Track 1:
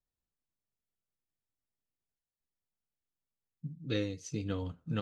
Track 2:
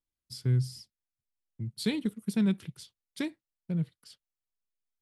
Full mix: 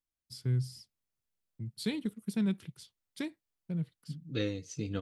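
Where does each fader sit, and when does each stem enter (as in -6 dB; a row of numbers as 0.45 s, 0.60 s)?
0.0 dB, -4.0 dB; 0.45 s, 0.00 s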